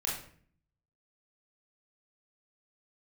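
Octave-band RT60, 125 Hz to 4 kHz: 0.90, 0.80, 0.55, 0.50, 0.50, 0.40 s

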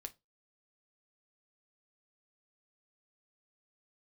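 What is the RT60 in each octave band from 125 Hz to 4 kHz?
0.25, 0.25, 0.25, 0.20, 0.15, 0.20 s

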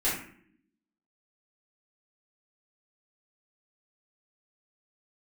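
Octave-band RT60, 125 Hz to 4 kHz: 0.85, 1.1, 0.70, 0.50, 0.60, 0.40 s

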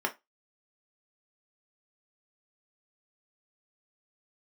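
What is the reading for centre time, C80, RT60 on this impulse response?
8 ms, 28.0 dB, 0.20 s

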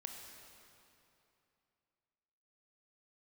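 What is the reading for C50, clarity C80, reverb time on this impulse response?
3.0 dB, 4.0 dB, 2.8 s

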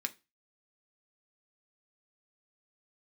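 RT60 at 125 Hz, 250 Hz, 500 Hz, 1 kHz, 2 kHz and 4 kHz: 0.30, 0.30, 0.25, 0.25, 0.25, 0.25 s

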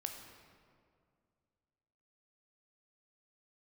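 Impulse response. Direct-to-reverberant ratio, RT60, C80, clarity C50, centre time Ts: 3.5 dB, 2.2 s, 6.5 dB, 5.5 dB, 46 ms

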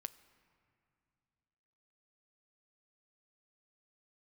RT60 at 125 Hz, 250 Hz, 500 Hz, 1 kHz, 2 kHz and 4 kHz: 3.0, 3.0, 2.5, 2.5, 2.3, 1.6 s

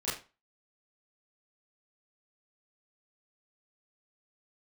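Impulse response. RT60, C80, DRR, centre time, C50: 0.30 s, 11.5 dB, -11.5 dB, 43 ms, 6.5 dB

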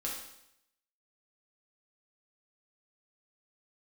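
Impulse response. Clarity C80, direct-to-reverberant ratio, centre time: 6.0 dB, -4.0 dB, 45 ms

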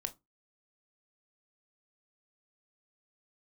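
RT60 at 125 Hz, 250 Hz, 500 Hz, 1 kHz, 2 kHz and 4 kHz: 0.30, 0.25, 0.20, 0.20, 0.15, 0.15 s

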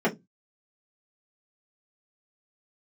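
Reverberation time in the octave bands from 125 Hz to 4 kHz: 0.35, 0.25, 0.20, 0.15, 0.10, 0.15 s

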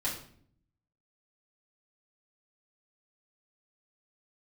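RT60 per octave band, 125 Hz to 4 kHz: 1.0, 0.90, 0.65, 0.50, 0.50, 0.45 s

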